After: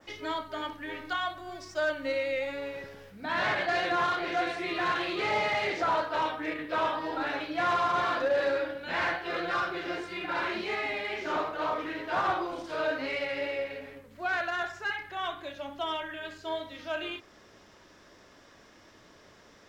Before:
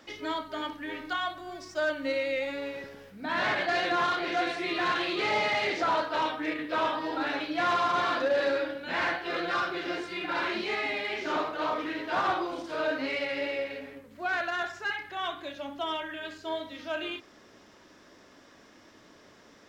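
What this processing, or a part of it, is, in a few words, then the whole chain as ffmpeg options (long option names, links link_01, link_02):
low shelf boost with a cut just above: -af "adynamicequalizer=threshold=0.00447:dfrequency=4200:dqfactor=0.83:tfrequency=4200:tqfactor=0.83:attack=5:release=100:ratio=0.375:range=2:mode=cutabove:tftype=bell,lowshelf=frequency=99:gain=6.5,equalizer=frequency=260:width_type=o:width=0.74:gain=-5"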